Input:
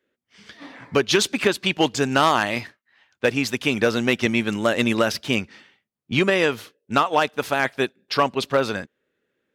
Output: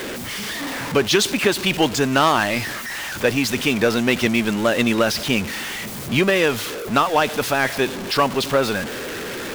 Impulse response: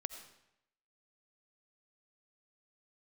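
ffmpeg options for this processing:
-af "aeval=exprs='val(0)+0.5*0.0708*sgn(val(0))':c=same"

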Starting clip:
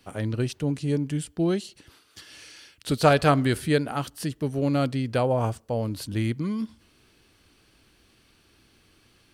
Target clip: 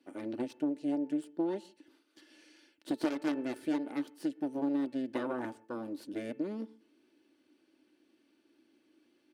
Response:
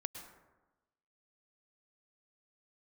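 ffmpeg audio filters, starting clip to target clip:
-filter_complex "[0:a]aeval=exprs='0.562*(cos(1*acos(clip(val(0)/0.562,-1,1)))-cos(1*PI/2))+0.224*(cos(3*acos(clip(val(0)/0.562,-1,1)))-cos(3*PI/2))+0.0708*(cos(4*acos(clip(val(0)/0.562,-1,1)))-cos(4*PI/2))+0.0631*(cos(5*acos(clip(val(0)/0.562,-1,1)))-cos(5*PI/2))+0.126*(cos(6*acos(clip(val(0)/0.562,-1,1)))-cos(6*PI/2))':c=same,highpass=f=300:t=q:w=3.6,equalizer=f=1.2k:t=o:w=0.23:g=-6.5,bandreject=f=439.6:t=h:w=4,bandreject=f=879.2:t=h:w=4,bandreject=f=1.3188k:t=h:w=4,bandreject=f=1.7584k:t=h:w=4,bandreject=f=2.198k:t=h:w=4,bandreject=f=2.6376k:t=h:w=4,bandreject=f=3.0772k:t=h:w=4,acompressor=threshold=-27dB:ratio=6,highshelf=f=4.2k:g=-8,aecho=1:1:3.4:0.38,asplit=2[a][b];[1:a]atrim=start_sample=2205,afade=t=out:st=0.23:d=0.01,atrim=end_sample=10584,lowpass=2.7k[c];[b][c]afir=irnorm=-1:irlink=0,volume=-15.5dB[d];[a][d]amix=inputs=2:normalize=0,volume=-4.5dB"

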